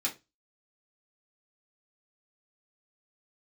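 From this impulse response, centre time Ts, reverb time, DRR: 14 ms, no single decay rate, -4.0 dB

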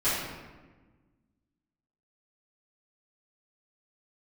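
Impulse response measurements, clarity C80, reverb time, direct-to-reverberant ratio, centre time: 2.0 dB, 1.3 s, -16.0 dB, 84 ms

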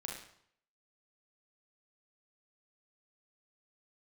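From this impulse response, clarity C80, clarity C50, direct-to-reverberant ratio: 7.0 dB, 3.0 dB, -1.0 dB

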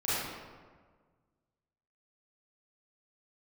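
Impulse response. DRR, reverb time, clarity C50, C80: -12.5 dB, 1.6 s, -5.0 dB, -1.5 dB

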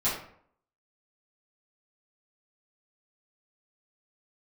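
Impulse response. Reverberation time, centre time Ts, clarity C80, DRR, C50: 0.60 s, 43 ms, 8.0 dB, -11.0 dB, 4.0 dB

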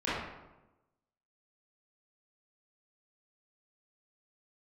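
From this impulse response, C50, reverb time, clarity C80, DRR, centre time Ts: -2.0 dB, 1.0 s, 2.0 dB, -12.0 dB, 82 ms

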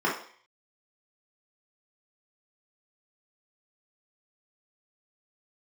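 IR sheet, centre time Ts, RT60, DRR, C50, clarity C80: 32 ms, 0.50 s, -6.5 dB, 5.5 dB, 11.0 dB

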